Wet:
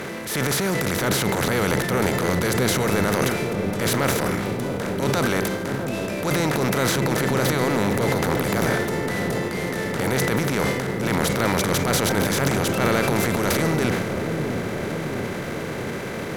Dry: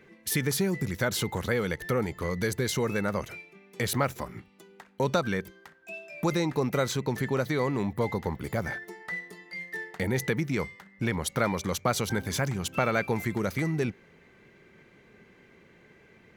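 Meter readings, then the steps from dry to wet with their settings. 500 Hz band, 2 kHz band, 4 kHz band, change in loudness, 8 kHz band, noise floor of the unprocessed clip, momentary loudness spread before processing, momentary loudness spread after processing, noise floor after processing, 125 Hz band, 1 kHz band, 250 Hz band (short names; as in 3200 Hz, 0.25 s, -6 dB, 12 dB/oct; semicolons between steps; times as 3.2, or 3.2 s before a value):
+8.0 dB, +8.5 dB, +9.5 dB, +7.0 dB, +9.0 dB, -58 dBFS, 11 LU, 6 LU, -29 dBFS, +7.0 dB, +8.5 dB, +8.5 dB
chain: per-bin compression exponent 0.4; transient shaper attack -8 dB, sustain +8 dB; dark delay 0.654 s, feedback 70%, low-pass 630 Hz, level -4.5 dB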